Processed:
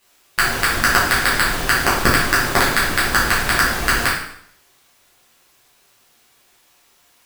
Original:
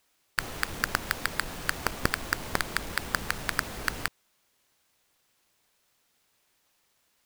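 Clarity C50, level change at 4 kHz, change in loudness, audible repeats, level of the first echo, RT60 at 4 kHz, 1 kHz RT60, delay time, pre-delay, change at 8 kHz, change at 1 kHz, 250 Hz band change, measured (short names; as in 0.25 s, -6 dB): 2.5 dB, +14.5 dB, +14.5 dB, none, none, 0.65 s, 0.65 s, none, 4 ms, +14.5 dB, +15.5 dB, +14.0 dB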